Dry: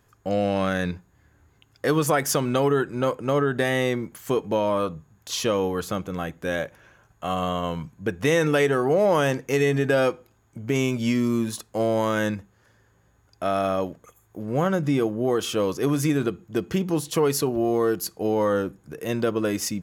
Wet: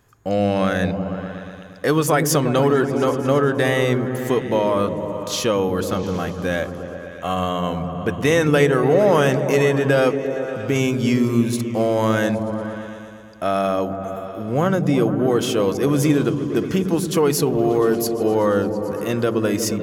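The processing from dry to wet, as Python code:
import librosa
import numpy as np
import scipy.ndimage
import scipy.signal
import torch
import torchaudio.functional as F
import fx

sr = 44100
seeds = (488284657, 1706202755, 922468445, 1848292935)

y = fx.echo_opening(x, sr, ms=117, hz=200, octaves=1, feedback_pct=70, wet_db=-3)
y = y * librosa.db_to_amplitude(3.5)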